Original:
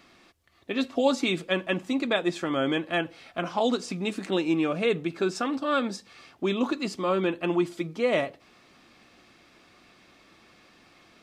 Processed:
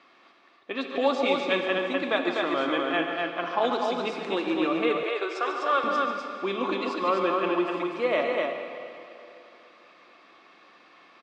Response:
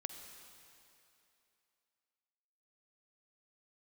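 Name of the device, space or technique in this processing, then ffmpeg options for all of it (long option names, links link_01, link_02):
station announcement: -filter_complex "[0:a]highpass=350,lowpass=3600,equalizer=frequency=1100:width_type=o:width=0.31:gain=6,aecho=1:1:142.9|250.7:0.316|0.708[link_01];[1:a]atrim=start_sample=2205[link_02];[link_01][link_02]afir=irnorm=-1:irlink=0,asettb=1/sr,asplit=3[link_03][link_04][link_05];[link_03]atrim=end=5.034[link_06];[link_04]atrim=start=5.03:end=5.84,asetpts=PTS-STARTPTS,afade=type=in:duration=0.004:curve=qsin,afade=type=out:start_time=0.806:duration=0.004:curve=qsin,highpass=frequency=410:width=0.5412,highpass=frequency=410:width=1.3066[link_07];[link_05]atrim=start=5.836[link_08];[link_06][link_07]acrossfade=duration=0.004:curve1=hsin:curve2=qsin[link_09];[link_09][link_08]acrossfade=duration=0.004:curve1=qsin:curve2=hsin,volume=2.5dB"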